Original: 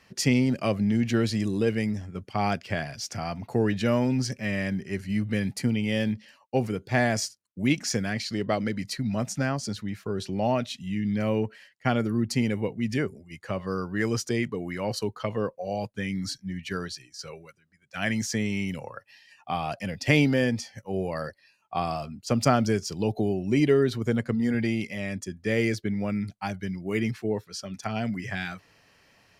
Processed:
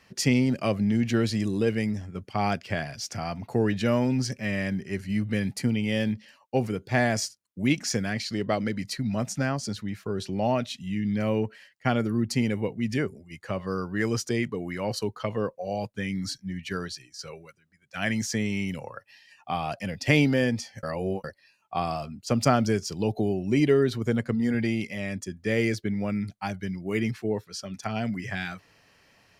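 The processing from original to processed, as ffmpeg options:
ffmpeg -i in.wav -filter_complex "[0:a]asplit=3[link_01][link_02][link_03];[link_01]atrim=end=20.832[link_04];[link_02]atrim=start=20.828:end=21.242,asetpts=PTS-STARTPTS,areverse[link_05];[link_03]atrim=start=21.238[link_06];[link_04][link_05]acrossfade=duration=0.004:curve1=hsin:curve2=hsin[link_07];[link_07][link_06]acrossfade=duration=0.004:curve1=hsin:curve2=hsin" out.wav

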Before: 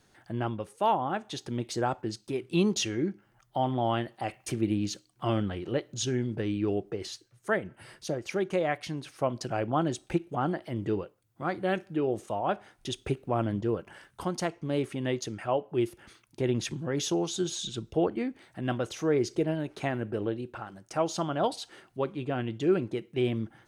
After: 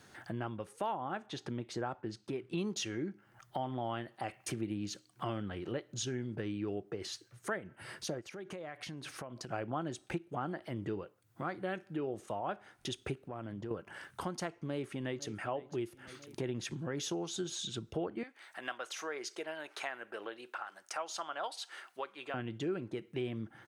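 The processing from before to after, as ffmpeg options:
ffmpeg -i in.wav -filter_complex "[0:a]asettb=1/sr,asplit=3[link_01][link_02][link_03];[link_01]atrim=end=1.264[link_04];[link_02]atrim=start=1.26:end=2.58,asetpts=PTS-STARTPTS,afade=type=in:duration=0.004:curve=qsin,afade=type=out:start_time=1.316:duration=0.004:curve=qsin,lowpass=frequency=3200:poles=1[link_05];[link_03]atrim=start=2.576[link_06];[link_04][link_05]acrossfade=duration=0.004:curve1=hsin:curve2=qsin[link_07];[link_07][link_06]acrossfade=duration=0.004:curve1=qsin:curve2=hsin,asplit=3[link_08][link_09][link_10];[link_08]afade=type=out:start_time=8.2:duration=0.02[link_11];[link_09]acompressor=threshold=-44dB:ratio=6:attack=3.2:release=140:knee=1:detection=peak,afade=type=in:start_time=8.2:duration=0.02,afade=type=out:start_time=9.52:duration=0.02[link_12];[link_10]afade=type=in:start_time=9.52:duration=0.02[link_13];[link_11][link_12][link_13]amix=inputs=3:normalize=0,asettb=1/sr,asplit=3[link_14][link_15][link_16];[link_14]atrim=end=13.244[link_17];[link_15]atrim=start=13.24:end=13.71,asetpts=PTS-STARTPTS,afade=type=in:duration=0.004:curve=qsin,afade=type=out:start_time=0.466:duration=0.004:curve=qsin,acompressor=threshold=-41dB:ratio=2.5:attack=3.2:release=140:knee=1:detection=peak[link_18];[link_16]atrim=start=13.706[link_19];[link_17][link_18]acrossfade=duration=0.004:curve1=hsin:curve2=qsin[link_20];[link_20][link_19]acrossfade=duration=0.004:curve1=qsin:curve2=hsin,asplit=2[link_21][link_22];[link_22]afade=type=in:start_time=14.5:duration=0.01,afade=type=out:start_time=15.32:duration=0.01,aecho=0:1:500|1000|1500|2000:0.125893|0.0566516|0.0254932|0.011472[link_23];[link_21][link_23]amix=inputs=2:normalize=0,asettb=1/sr,asplit=3[link_24][link_25][link_26];[link_24]atrim=end=18.234[link_27];[link_25]atrim=start=18.23:end=22.34,asetpts=PTS-STARTPTS,afade=type=in:duration=0.004:curve=qsin,afade=type=out:start_time=4.106:duration=0.004:curve=qsin,highpass=830[link_28];[link_26]atrim=start=22.336[link_29];[link_27][link_28]acrossfade=duration=0.004:curve1=hsin:curve2=qsin[link_30];[link_30][link_29]acrossfade=duration=0.004:curve1=qsin:curve2=hsin,highpass=71,equalizer=frequency=1500:width_type=o:width=1:gain=4,acompressor=threshold=-46dB:ratio=2.5,volume=4.5dB" out.wav

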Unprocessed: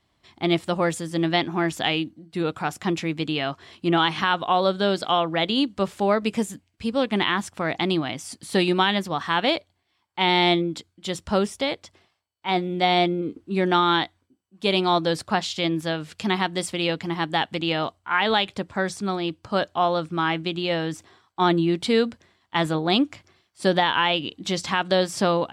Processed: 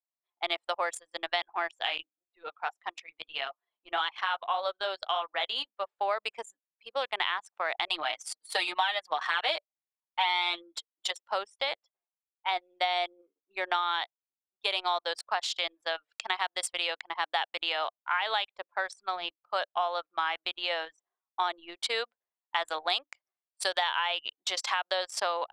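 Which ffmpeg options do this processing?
ffmpeg -i in.wav -filter_complex "[0:a]asettb=1/sr,asplit=3[link_01][link_02][link_03];[link_01]atrim=end=1.714[link_04];[link_02]atrim=start=1.71:end=6.01,asetpts=PTS-STARTPTS,afade=type=in:duration=0.004:curve=qsin,afade=type=out:start_time=4.296:duration=0.004:curve=qsin,flanger=delay=6.6:depth=6.1:regen=-42:speed=1.7:shape=sinusoidal[link_05];[link_03]atrim=start=6.006[link_06];[link_04][link_05]acrossfade=duration=0.004:curve1=hsin:curve2=qsin[link_07];[link_07][link_06]acrossfade=duration=0.004:curve1=qsin:curve2=hsin,asettb=1/sr,asplit=3[link_08][link_09][link_10];[link_08]atrim=end=7.874[link_11];[link_09]atrim=start=7.87:end=11.11,asetpts=PTS-STARTPTS,afade=type=in:duration=0.004:curve=qsin,afade=type=out:start_time=3.236:duration=0.004:curve=qsin,aecho=1:1:6.5:0.98,atrim=end_sample=142884[link_12];[link_10]atrim=start=11.106[link_13];[link_11][link_12]acrossfade=duration=0.004:curve1=hsin:curve2=qsin[link_14];[link_14][link_13]acrossfade=duration=0.004:curve1=qsin:curve2=hsin,asettb=1/sr,asplit=3[link_15][link_16][link_17];[link_15]atrim=end=22.684[link_18];[link_16]atrim=start=22.68:end=23.89,asetpts=PTS-STARTPTS,afade=type=in:duration=0.004:curve=qsin,afade=type=out:start_time=1.206:duration=0.004:curve=qsin,highshelf=frequency=4000:gain=8.5[link_19];[link_17]atrim=start=23.886[link_20];[link_18][link_19]acrossfade=duration=0.004:curve1=hsin:curve2=qsin[link_21];[link_21][link_20]acrossfade=duration=0.004:curve1=qsin:curve2=hsin,highpass=frequency=640:width=0.5412,highpass=frequency=640:width=1.3066,anlmdn=15.8,acompressor=threshold=-26dB:ratio=4" out.wav

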